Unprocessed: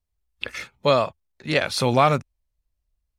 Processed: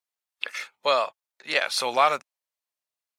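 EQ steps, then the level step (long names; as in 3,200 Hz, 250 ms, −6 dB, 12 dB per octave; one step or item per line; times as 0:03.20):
high-pass filter 700 Hz 12 dB per octave
0.0 dB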